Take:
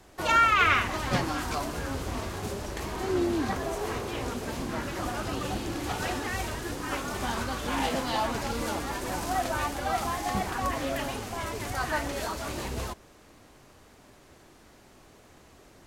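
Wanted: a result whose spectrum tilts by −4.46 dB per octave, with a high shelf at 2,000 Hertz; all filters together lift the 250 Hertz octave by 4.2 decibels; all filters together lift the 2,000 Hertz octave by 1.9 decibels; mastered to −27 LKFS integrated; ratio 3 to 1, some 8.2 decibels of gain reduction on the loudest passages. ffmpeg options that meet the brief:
ffmpeg -i in.wav -af "equalizer=frequency=250:width_type=o:gain=5.5,highshelf=frequency=2000:gain=-8,equalizer=frequency=2000:width_type=o:gain=7,acompressor=threshold=-28dB:ratio=3,volume=5dB" out.wav

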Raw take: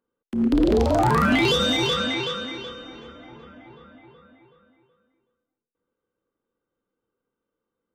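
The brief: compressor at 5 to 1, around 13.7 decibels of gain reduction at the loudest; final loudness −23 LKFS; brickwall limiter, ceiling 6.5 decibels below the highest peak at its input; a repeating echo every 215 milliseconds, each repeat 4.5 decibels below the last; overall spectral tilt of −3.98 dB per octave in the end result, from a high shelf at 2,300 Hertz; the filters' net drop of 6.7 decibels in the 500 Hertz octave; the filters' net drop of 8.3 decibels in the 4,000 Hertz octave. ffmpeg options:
ffmpeg -i in.wav -af "equalizer=frequency=500:width_type=o:gain=-8.5,highshelf=frequency=2300:gain=-4.5,equalizer=frequency=4000:width_type=o:gain=-6,acompressor=threshold=-34dB:ratio=5,alimiter=level_in=7.5dB:limit=-24dB:level=0:latency=1,volume=-7.5dB,aecho=1:1:215|430|645|860|1075|1290|1505|1720|1935:0.596|0.357|0.214|0.129|0.0772|0.0463|0.0278|0.0167|0.01,volume=16dB" out.wav

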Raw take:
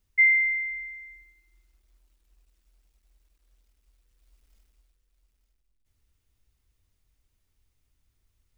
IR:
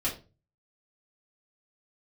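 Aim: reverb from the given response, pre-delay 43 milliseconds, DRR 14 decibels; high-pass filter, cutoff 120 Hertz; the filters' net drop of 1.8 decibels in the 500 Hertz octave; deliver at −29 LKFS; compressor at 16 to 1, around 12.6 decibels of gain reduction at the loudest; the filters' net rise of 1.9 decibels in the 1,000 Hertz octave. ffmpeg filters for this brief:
-filter_complex "[0:a]highpass=120,equalizer=frequency=500:width_type=o:gain=-3.5,equalizer=frequency=1000:width_type=o:gain=3.5,acompressor=threshold=-28dB:ratio=16,asplit=2[link_01][link_02];[1:a]atrim=start_sample=2205,adelay=43[link_03];[link_02][link_03]afir=irnorm=-1:irlink=0,volume=-20.5dB[link_04];[link_01][link_04]amix=inputs=2:normalize=0,volume=2.5dB"

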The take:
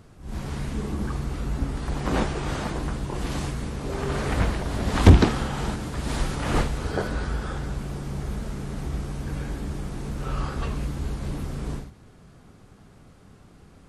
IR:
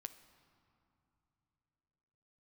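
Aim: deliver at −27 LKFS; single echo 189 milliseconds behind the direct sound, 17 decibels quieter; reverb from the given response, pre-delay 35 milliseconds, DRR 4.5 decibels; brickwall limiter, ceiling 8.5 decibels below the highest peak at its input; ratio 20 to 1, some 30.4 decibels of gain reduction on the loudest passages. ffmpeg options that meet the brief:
-filter_complex "[0:a]acompressor=threshold=-38dB:ratio=20,alimiter=level_in=11dB:limit=-24dB:level=0:latency=1,volume=-11dB,aecho=1:1:189:0.141,asplit=2[link_01][link_02];[1:a]atrim=start_sample=2205,adelay=35[link_03];[link_02][link_03]afir=irnorm=-1:irlink=0,volume=0.5dB[link_04];[link_01][link_04]amix=inputs=2:normalize=0,volume=17dB"

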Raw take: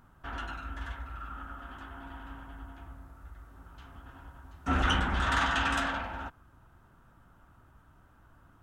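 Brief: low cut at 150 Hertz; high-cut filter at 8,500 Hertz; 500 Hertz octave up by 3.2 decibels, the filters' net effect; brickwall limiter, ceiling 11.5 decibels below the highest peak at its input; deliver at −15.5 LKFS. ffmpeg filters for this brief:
ffmpeg -i in.wav -af "highpass=150,lowpass=8500,equalizer=frequency=500:width_type=o:gain=4.5,volume=23dB,alimiter=limit=-3.5dB:level=0:latency=1" out.wav

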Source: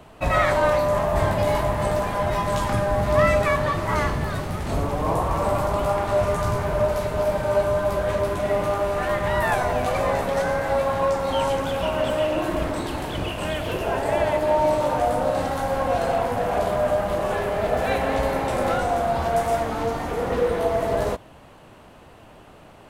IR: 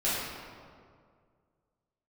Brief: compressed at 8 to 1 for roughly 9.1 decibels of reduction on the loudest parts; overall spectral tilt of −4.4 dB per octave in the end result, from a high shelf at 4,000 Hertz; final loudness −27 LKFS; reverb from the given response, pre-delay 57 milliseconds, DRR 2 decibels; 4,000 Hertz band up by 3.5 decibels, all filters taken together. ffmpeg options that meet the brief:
-filter_complex "[0:a]highshelf=frequency=4000:gain=-6,equalizer=frequency=4000:width_type=o:gain=8,acompressor=threshold=-23dB:ratio=8,asplit=2[link_01][link_02];[1:a]atrim=start_sample=2205,adelay=57[link_03];[link_02][link_03]afir=irnorm=-1:irlink=0,volume=-12.5dB[link_04];[link_01][link_04]amix=inputs=2:normalize=0,volume=-2dB"

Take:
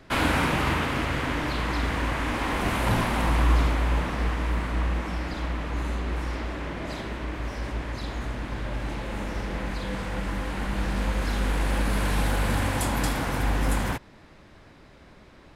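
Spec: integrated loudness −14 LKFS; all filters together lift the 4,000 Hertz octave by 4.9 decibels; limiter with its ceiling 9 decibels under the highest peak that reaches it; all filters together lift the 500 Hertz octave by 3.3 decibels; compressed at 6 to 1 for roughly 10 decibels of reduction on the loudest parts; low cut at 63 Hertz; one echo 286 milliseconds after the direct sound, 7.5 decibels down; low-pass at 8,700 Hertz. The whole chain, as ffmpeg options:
ffmpeg -i in.wav -af "highpass=63,lowpass=8700,equalizer=frequency=500:width_type=o:gain=4,equalizer=frequency=4000:width_type=o:gain=6.5,acompressor=threshold=-29dB:ratio=6,alimiter=level_in=3dB:limit=-24dB:level=0:latency=1,volume=-3dB,aecho=1:1:286:0.422,volume=21.5dB" out.wav

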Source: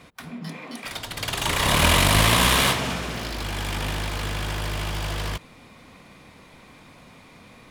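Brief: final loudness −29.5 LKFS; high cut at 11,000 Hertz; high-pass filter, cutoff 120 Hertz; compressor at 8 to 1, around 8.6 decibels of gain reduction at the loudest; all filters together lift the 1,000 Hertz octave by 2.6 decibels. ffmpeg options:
ffmpeg -i in.wav -af "highpass=120,lowpass=11000,equalizer=frequency=1000:width_type=o:gain=3,acompressor=threshold=-23dB:ratio=8,volume=-1dB" out.wav

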